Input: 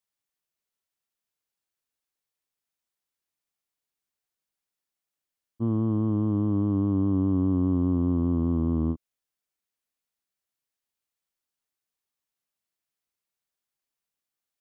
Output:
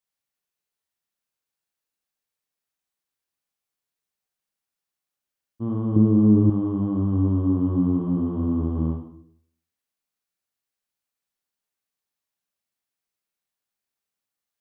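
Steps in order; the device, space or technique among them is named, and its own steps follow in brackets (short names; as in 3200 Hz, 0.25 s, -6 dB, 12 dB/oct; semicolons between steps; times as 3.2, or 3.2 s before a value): bathroom (reverb RT60 0.65 s, pre-delay 39 ms, DRR 0.5 dB); 5.96–6.5 resonant low shelf 590 Hz +7 dB, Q 1.5; gain -1.5 dB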